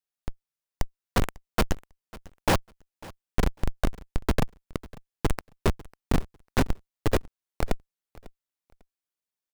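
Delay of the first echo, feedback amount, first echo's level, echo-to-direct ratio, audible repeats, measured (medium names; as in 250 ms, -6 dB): 548 ms, 22%, -21.5 dB, -21.5 dB, 2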